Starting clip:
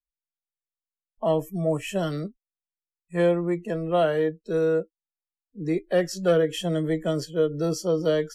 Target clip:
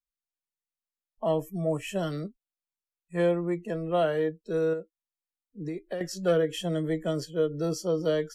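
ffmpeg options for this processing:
-filter_complex "[0:a]asettb=1/sr,asplit=3[a][b][c];[a]atrim=end=4.734[d];[b]atrim=start=4.73:end=6.01,asetpts=PTS-STARTPTS,afade=t=in:d=0.004:c=qsin,afade=t=out:st=1.276:d=0.004:c=qsin,acompressor=threshold=-27dB:ratio=12[e];[c]atrim=start=6.006[f];[d][e]acrossfade=d=0.004:c1=hsin:c2=qsin[g];[g][f]acrossfade=d=0.004:c1=qsin:c2=hsin,volume=-3.5dB"

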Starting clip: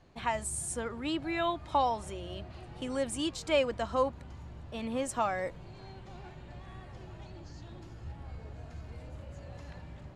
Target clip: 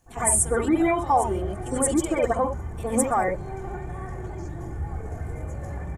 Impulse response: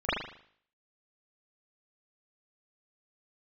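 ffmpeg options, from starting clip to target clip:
-filter_complex "[0:a]alimiter=level_in=0.5dB:limit=-24dB:level=0:latency=1:release=121,volume=-0.5dB,atempo=1.7,aexciter=amount=15.4:drive=3.6:freq=6.4k[a];[1:a]atrim=start_sample=2205,atrim=end_sample=3528,asetrate=27783,aresample=44100[b];[a][b]afir=irnorm=-1:irlink=0,volume=-2.5dB"

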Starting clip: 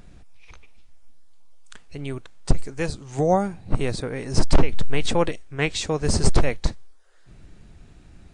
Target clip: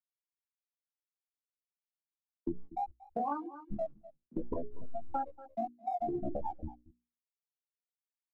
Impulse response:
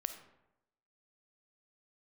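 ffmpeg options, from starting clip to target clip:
-filter_complex "[0:a]afftfilt=real='re*gte(hypot(re,im),0.501)':imag='im*gte(hypot(re,im),0.501)':win_size=1024:overlap=0.75,acrossover=split=180 7500:gain=0.112 1 0.0891[a][b][c];[a][b][c]amix=inputs=3:normalize=0,acrossover=split=170[d][e];[e]acompressor=threshold=-26dB:ratio=2[f];[d][f]amix=inputs=2:normalize=0,asplit=2[g][h];[h]aeval=exprs='sgn(val(0))*max(abs(val(0))-0.00422,0)':c=same,volume=-10.5dB[i];[g][i]amix=inputs=2:normalize=0,aecho=1:1:233:0.0668,flanger=delay=18.5:depth=4:speed=0.41,asetrate=70004,aresample=44100,atempo=0.629961,equalizer=f=340:w=4.6:g=10,acompressor=threshold=-35dB:ratio=6,bandreject=f=60:t=h:w=6,bandreject=f=120:t=h:w=6,bandreject=f=180:t=h:w=6,bandreject=f=240:t=h:w=6,bandreject=f=300:t=h:w=6,bandreject=f=360:t=h:w=6,bandreject=f=420:t=h:w=6,volume=3dB"

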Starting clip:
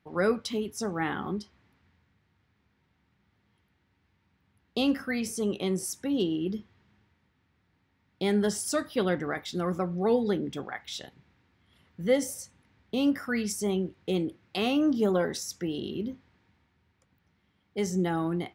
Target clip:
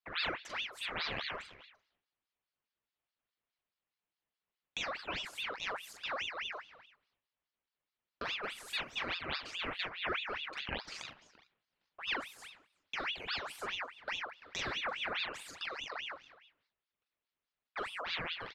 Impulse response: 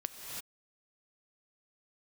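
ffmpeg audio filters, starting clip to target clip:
-filter_complex "[0:a]agate=range=-20dB:threshold=-59dB:ratio=16:detection=peak,acompressor=threshold=-35dB:ratio=4,bandpass=f=1.1k:t=q:w=0.63:csg=0,asplit=2[a][b];[b]adelay=42,volume=-4dB[c];[a][c]amix=inputs=2:normalize=0,asplit=2[d][e];[e]adelay=340,highpass=300,lowpass=3.4k,asoftclip=type=hard:threshold=-33.5dB,volume=-16dB[f];[d][f]amix=inputs=2:normalize=0,asplit=2[g][h];[1:a]atrim=start_sample=2205,atrim=end_sample=6615,lowpass=2.8k[i];[h][i]afir=irnorm=-1:irlink=0,volume=-6.5dB[j];[g][j]amix=inputs=2:normalize=0,aeval=exprs='val(0)*sin(2*PI*2000*n/s+2000*0.6/4.8*sin(2*PI*4.8*n/s))':c=same,volume=2dB"

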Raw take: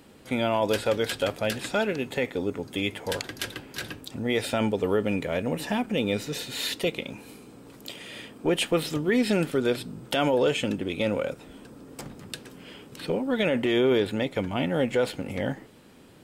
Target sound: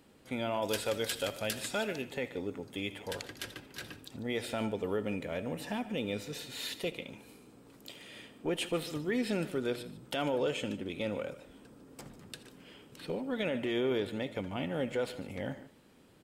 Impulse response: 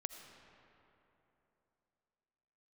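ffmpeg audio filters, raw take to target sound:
-filter_complex "[0:a]asettb=1/sr,asplit=3[a][b][c];[a]atrim=end=0.624[d];[b]atrim=start=0.62:end=2.02,asetpts=PTS-STARTPTS,afade=t=in:d=0.004:c=qsin,afade=t=out:st=1.396:d=0.004:c=qsin,highshelf=f=3.7k:g=10[e];[c]atrim=start=2.016[f];[d][e]acrossfade=d=0.004:c1=hsin:c2=qsin[g];[g][f]acrossfade=d=0.004:c1=qsin:c2=hsin,aecho=1:1:147:0.15[h];[1:a]atrim=start_sample=2205,atrim=end_sample=3969[i];[h][i]afir=irnorm=-1:irlink=0,volume=-6dB"

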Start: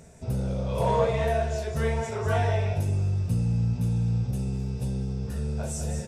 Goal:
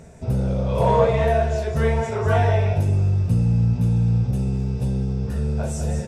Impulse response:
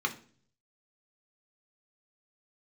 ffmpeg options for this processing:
-af "highshelf=f=3.7k:g=-8,volume=6.5dB"

